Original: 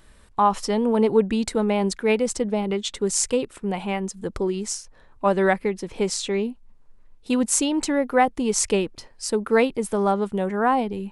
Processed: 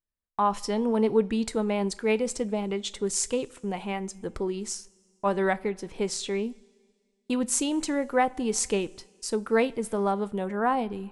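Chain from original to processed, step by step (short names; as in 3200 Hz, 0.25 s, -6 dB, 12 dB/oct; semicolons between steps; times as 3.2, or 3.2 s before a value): gate -39 dBFS, range -37 dB; two-slope reverb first 0.29 s, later 1.9 s, from -18 dB, DRR 14 dB; gain -5 dB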